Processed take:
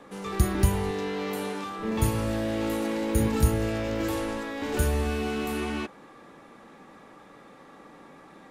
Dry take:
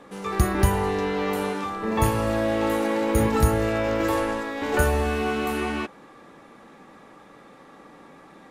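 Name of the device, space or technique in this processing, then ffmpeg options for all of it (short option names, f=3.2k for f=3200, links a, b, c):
one-band saturation: -filter_complex "[0:a]acrossover=split=390|2900[a][b][c];[b]asoftclip=type=tanh:threshold=-32.5dB[d];[a][d][c]amix=inputs=3:normalize=0,asettb=1/sr,asplit=3[e][f][g];[e]atrim=end=0.914[h];[f]atrim=start=0.91:end=1.79,asetpts=PTS-STARTPTS,afade=t=in:d=0.004:c=qsin,afade=t=out:st=0.876:d=0.004:c=qsin,highpass=f=200:p=1[i];[g]atrim=start=1.786[j];[h][i]acrossfade=d=0.004:c1=hsin:c2=qsin[k];[k][j]acrossfade=d=0.004:c1=qsin:c2=hsin,volume=-1.5dB"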